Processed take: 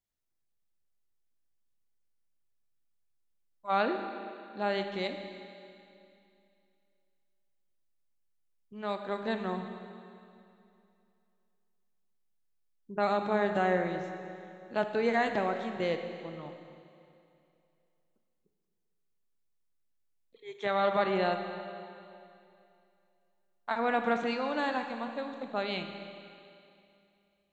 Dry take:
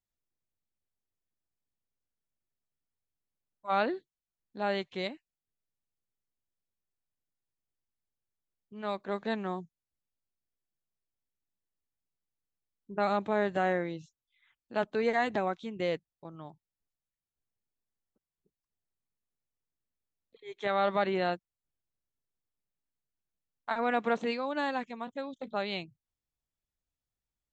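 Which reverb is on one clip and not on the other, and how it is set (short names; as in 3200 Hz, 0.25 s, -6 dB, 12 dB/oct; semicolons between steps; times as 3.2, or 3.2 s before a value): Schroeder reverb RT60 2.6 s, combs from 27 ms, DRR 6 dB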